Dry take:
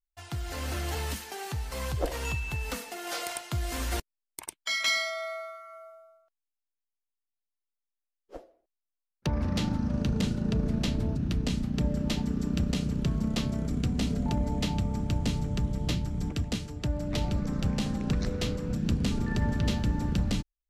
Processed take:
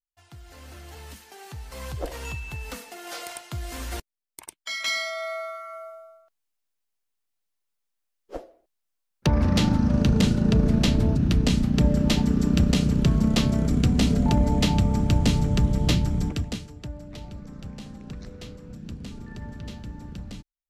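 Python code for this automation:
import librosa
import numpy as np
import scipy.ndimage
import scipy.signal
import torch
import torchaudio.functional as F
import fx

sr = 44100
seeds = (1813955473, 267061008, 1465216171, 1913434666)

y = fx.gain(x, sr, db=fx.line((0.89, -11.0), (1.91, -2.0), (4.75, -2.0), (5.61, 8.0), (16.13, 8.0), (16.7, -3.5), (17.16, -10.0)))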